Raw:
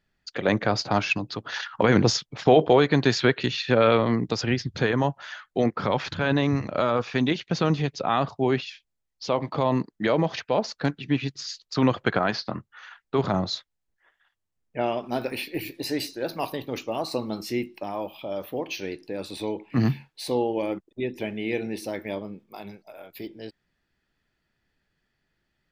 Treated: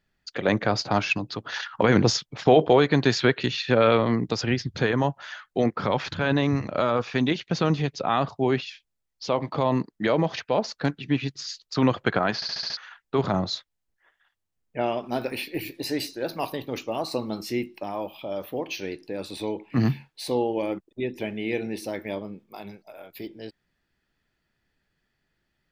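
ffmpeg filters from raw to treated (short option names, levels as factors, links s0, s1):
-filter_complex "[0:a]asplit=7[s0][s1][s2][s3][s4][s5][s6];[s0]atrim=end=12.422[s7];[s1]atrim=start=12.348:end=12.422[s8];[s2]atrim=start=12.348:end=12.422[s9];[s3]atrim=start=12.348:end=12.422[s10];[s4]atrim=start=12.348:end=12.422[s11];[s5]atrim=start=12.348:end=12.422[s12];[s6]atrim=start=12.768[s13];[s7][s8]acrossfade=d=0.004:c1=hsin:c2=hsin[s14];[s14][s9]acrossfade=d=0.004:c1=hsin:c2=hsin[s15];[s15][s10]acrossfade=d=0.004:c1=hsin:c2=hsin[s16];[s16][s11]acrossfade=d=0.004:c1=hsin:c2=hsin[s17];[s17][s12]acrossfade=d=0.004:c1=hsin:c2=hsin[s18];[s18][s13]acrossfade=d=0.004:c1=hsin:c2=hsin"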